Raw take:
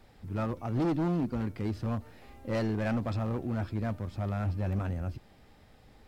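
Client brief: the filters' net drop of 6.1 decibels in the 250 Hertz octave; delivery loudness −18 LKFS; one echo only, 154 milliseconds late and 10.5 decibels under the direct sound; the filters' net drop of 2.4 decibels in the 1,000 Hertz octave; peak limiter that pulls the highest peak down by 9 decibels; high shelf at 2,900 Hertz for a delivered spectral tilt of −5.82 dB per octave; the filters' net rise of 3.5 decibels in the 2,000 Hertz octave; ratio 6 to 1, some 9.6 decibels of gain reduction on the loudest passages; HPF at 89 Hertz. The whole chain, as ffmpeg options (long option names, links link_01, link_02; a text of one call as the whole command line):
ffmpeg -i in.wav -af "highpass=89,equalizer=frequency=250:width_type=o:gain=-8,equalizer=frequency=1000:width_type=o:gain=-5,equalizer=frequency=2000:width_type=o:gain=3.5,highshelf=frequency=2900:gain=8,acompressor=threshold=-40dB:ratio=6,alimiter=level_in=13.5dB:limit=-24dB:level=0:latency=1,volume=-13.5dB,aecho=1:1:154:0.299,volume=29.5dB" out.wav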